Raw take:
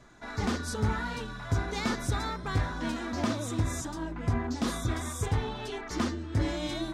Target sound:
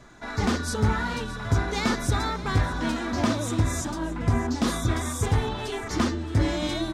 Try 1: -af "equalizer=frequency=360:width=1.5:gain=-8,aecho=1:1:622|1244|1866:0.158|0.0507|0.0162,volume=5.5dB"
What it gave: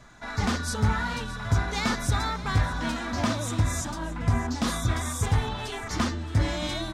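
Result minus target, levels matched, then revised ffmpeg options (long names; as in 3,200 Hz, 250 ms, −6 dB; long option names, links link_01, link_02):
500 Hz band −3.0 dB
-af "aecho=1:1:622|1244|1866:0.158|0.0507|0.0162,volume=5.5dB"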